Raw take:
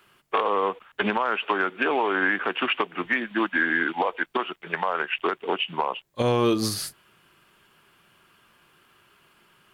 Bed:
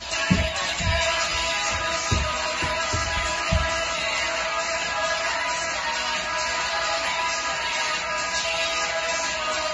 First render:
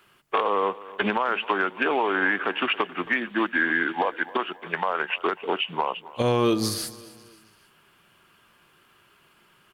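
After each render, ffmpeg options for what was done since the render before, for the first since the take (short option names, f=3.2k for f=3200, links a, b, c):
-af "aecho=1:1:271|542|813:0.112|0.0482|0.0207"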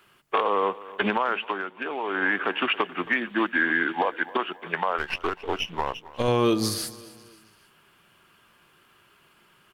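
-filter_complex "[0:a]asettb=1/sr,asplit=3[a][b][c];[a]atrim=end=4.984[d];[b]atrim=start=4.98:end=6.28,asetpts=PTS-STARTPTS,afade=t=in:d=0.004:c=qsin,afade=t=out:st=1.296:d=0.004:c=qsin,aeval=exprs='if(lt(val(0),0),0.447*val(0),val(0))':c=same[e];[c]atrim=start=6.276[f];[d][e]acrossfade=d=0.004:c1=hsin:c2=qsin[g];[g][f]acrossfade=d=0.004:c1=qsin:c2=hsin,asplit=3[h][i][j];[h]atrim=end=1.63,asetpts=PTS-STARTPTS,afade=t=out:st=1.25:d=0.38:silence=0.398107[k];[i]atrim=start=1.63:end=1.97,asetpts=PTS-STARTPTS,volume=-8dB[l];[j]atrim=start=1.97,asetpts=PTS-STARTPTS,afade=t=in:d=0.38:silence=0.398107[m];[k][l][m]concat=n=3:v=0:a=1"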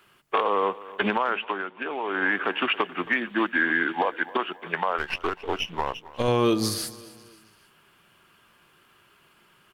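-filter_complex "[0:a]asettb=1/sr,asplit=3[a][b][c];[a]atrim=end=1.304[d];[b]atrim=start=1.3:end=2.14,asetpts=PTS-STARTPTS,afade=t=in:d=0.004:c=qsin,afade=t=out:st=0.836:d=0.004:c=qsin,lowpass=f=4.3k:w=0.5412,lowpass=f=4.3k:w=1.3066[e];[c]atrim=start=2.136[f];[d][e]acrossfade=d=0.004:c1=hsin:c2=qsin[g];[g][f]acrossfade=d=0.004:c1=qsin:c2=hsin"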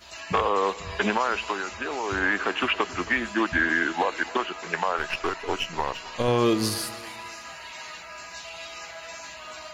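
-filter_complex "[1:a]volume=-14.5dB[a];[0:a][a]amix=inputs=2:normalize=0"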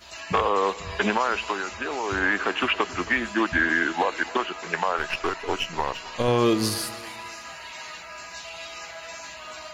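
-af "volume=1dB"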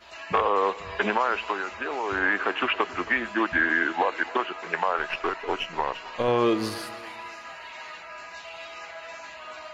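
-af "bass=f=250:g=-8,treble=f=4k:g=-13"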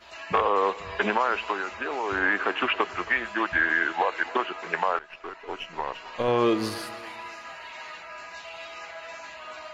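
-filter_complex "[0:a]asettb=1/sr,asplit=3[a][b][c];[a]atrim=end=2.884[d];[b]atrim=start=2.88:end=4.25,asetpts=PTS-STARTPTS,afade=t=in:d=0.004:c=qsin,afade=t=out:st=1.366:d=0.004:c=qsin,equalizer=f=260:t=o:w=0.73:g=-9[e];[c]atrim=start=4.246[f];[d][e]acrossfade=d=0.004:c1=hsin:c2=qsin[g];[g][f]acrossfade=d=0.004:c1=qsin:c2=hsin,asplit=2[h][i];[h]atrim=end=4.99,asetpts=PTS-STARTPTS,afade=t=out:st=4.986:d=0.004:c=hsin:silence=0.11885[j];[i]atrim=start=4.99,asetpts=PTS-STARTPTS,afade=t=in:d=1.42:silence=0.11885[k];[j][k]concat=n=2:v=0:a=1"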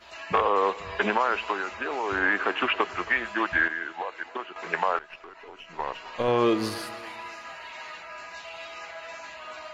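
-filter_complex "[0:a]asplit=3[a][b][c];[a]afade=t=out:st=5.16:d=0.02[d];[b]acompressor=threshold=-41dB:ratio=5:attack=3.2:release=140:knee=1:detection=peak,afade=t=in:st=5.16:d=0.02,afade=t=out:st=5.78:d=0.02[e];[c]afade=t=in:st=5.78:d=0.02[f];[d][e][f]amix=inputs=3:normalize=0,asplit=3[g][h][i];[g]atrim=end=3.682[j];[h]atrim=start=3.678:end=4.562,asetpts=PTS-STARTPTS,volume=-8.5dB[k];[i]atrim=start=4.558[l];[j][k]acrossfade=d=0.004:c1=hsin:c2=hsin[m];[m][l]acrossfade=d=0.004:c1=hsin:c2=hsin"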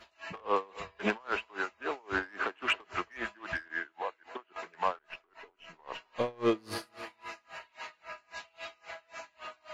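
-af "asoftclip=type=tanh:threshold=-17dB,aeval=exprs='val(0)*pow(10,-30*(0.5-0.5*cos(2*PI*3.7*n/s))/20)':c=same"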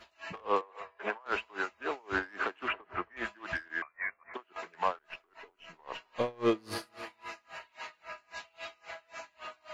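-filter_complex "[0:a]asettb=1/sr,asplit=3[a][b][c];[a]atrim=end=0.614[d];[b]atrim=start=0.61:end=1.26,asetpts=PTS-STARTPTS,afade=t=in:d=0.004:c=qsin,afade=t=out:st=0.646:d=0.004:c=qsin,acrossover=split=420 2100:gain=0.112 1 0.224[e][f][g];[e][f][g]amix=inputs=3:normalize=0[h];[c]atrim=start=1.256[i];[d][h]acrossfade=d=0.004:c1=hsin:c2=qsin[j];[j][i]acrossfade=d=0.004:c1=qsin:c2=hsin,asettb=1/sr,asplit=3[k][l][m];[k]atrim=end=2.684[n];[l]atrim=start=2.68:end=3.17,asetpts=PTS-STARTPTS,afade=t=in:d=0.004:c=qsin,afade=t=out:st=0.486:d=0.004:c=qsin,lowpass=1.8k[o];[m]atrim=start=3.166[p];[n][o]acrossfade=d=0.004:c1=hsin:c2=qsin[q];[q][p]acrossfade=d=0.004:c1=qsin:c2=hsin,asettb=1/sr,asplit=3[r][s][t];[r]atrim=end=3.824[u];[s]atrim=start=3.82:end=4.34,asetpts=PTS-STARTPTS,afade=t=in:d=0.004:c=qsin,afade=t=out:st=0.516:d=0.004:c=qsin,lowpass=f=2.3k:t=q:w=0.5098,lowpass=f=2.3k:t=q:w=0.6013,lowpass=f=2.3k:t=q:w=0.9,lowpass=f=2.3k:t=q:w=2.563,afreqshift=-2700[v];[t]atrim=start=4.336[w];[u][v]acrossfade=d=0.004:c1=hsin:c2=qsin[x];[x][w]acrossfade=d=0.004:c1=qsin:c2=hsin"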